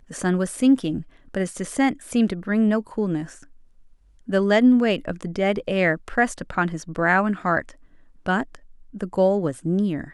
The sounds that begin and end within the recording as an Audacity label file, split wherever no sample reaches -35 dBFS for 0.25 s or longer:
1.350000	3.430000	sound
4.280000	7.710000	sound
8.260000	8.550000	sound